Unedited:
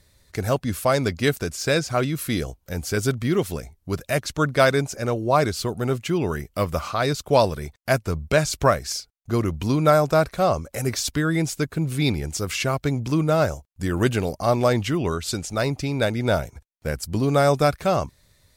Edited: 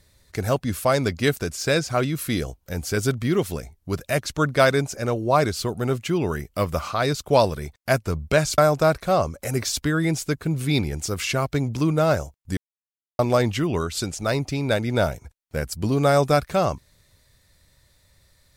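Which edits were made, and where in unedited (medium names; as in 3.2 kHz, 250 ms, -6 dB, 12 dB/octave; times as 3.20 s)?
8.58–9.89 s: delete
13.88–14.50 s: mute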